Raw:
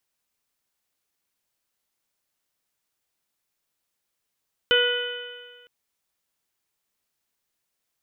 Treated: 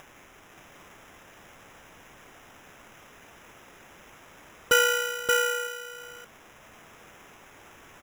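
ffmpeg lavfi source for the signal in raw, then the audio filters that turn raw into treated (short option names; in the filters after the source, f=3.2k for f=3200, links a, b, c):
-f lavfi -i "aevalsrc='0.106*pow(10,-3*t/1.59)*sin(2*PI*485.44*t)+0.0126*pow(10,-3*t/1.59)*sin(2*PI*973.49*t)+0.1*pow(10,-3*t/1.59)*sin(2*PI*1466.74*t)+0.0335*pow(10,-3*t/1.59)*sin(2*PI*1967.74*t)+0.0355*pow(10,-3*t/1.59)*sin(2*PI*2478.96*t)+0.126*pow(10,-3*t/1.59)*sin(2*PI*3002.8*t)+0.0141*pow(10,-3*t/1.59)*sin(2*PI*3541.56*t)':d=0.96:s=44100"
-filter_complex "[0:a]acrossover=split=180[a][b];[b]acompressor=mode=upward:threshold=-31dB:ratio=2.5[c];[a][c]amix=inputs=2:normalize=0,acrusher=samples=10:mix=1:aa=0.000001,aecho=1:1:577:0.668"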